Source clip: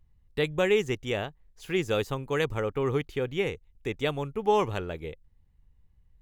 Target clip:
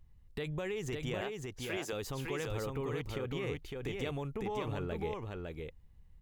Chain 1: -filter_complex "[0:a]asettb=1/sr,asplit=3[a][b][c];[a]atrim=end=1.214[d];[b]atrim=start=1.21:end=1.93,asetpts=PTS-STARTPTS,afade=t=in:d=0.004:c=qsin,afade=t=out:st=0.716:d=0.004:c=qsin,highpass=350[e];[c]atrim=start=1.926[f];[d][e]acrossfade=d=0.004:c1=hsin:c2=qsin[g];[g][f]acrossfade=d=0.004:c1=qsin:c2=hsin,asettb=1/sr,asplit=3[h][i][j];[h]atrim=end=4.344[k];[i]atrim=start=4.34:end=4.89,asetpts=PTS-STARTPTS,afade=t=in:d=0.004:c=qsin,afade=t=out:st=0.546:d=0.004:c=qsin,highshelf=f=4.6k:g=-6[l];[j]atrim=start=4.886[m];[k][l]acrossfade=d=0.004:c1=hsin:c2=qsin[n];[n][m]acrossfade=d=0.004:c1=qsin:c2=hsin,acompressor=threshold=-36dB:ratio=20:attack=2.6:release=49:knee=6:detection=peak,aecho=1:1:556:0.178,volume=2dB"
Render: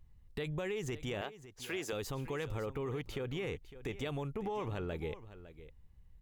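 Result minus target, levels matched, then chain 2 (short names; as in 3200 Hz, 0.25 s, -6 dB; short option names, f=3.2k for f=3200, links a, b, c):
echo-to-direct -11.5 dB
-filter_complex "[0:a]asettb=1/sr,asplit=3[a][b][c];[a]atrim=end=1.214[d];[b]atrim=start=1.21:end=1.93,asetpts=PTS-STARTPTS,afade=t=in:d=0.004:c=qsin,afade=t=out:st=0.716:d=0.004:c=qsin,highpass=350[e];[c]atrim=start=1.926[f];[d][e]acrossfade=d=0.004:c1=hsin:c2=qsin[g];[g][f]acrossfade=d=0.004:c1=qsin:c2=hsin,asettb=1/sr,asplit=3[h][i][j];[h]atrim=end=4.344[k];[i]atrim=start=4.34:end=4.89,asetpts=PTS-STARTPTS,afade=t=in:d=0.004:c=qsin,afade=t=out:st=0.546:d=0.004:c=qsin,highshelf=f=4.6k:g=-6[l];[j]atrim=start=4.886[m];[k][l]acrossfade=d=0.004:c1=hsin:c2=qsin[n];[n][m]acrossfade=d=0.004:c1=qsin:c2=hsin,acompressor=threshold=-36dB:ratio=20:attack=2.6:release=49:knee=6:detection=peak,aecho=1:1:556:0.668,volume=2dB"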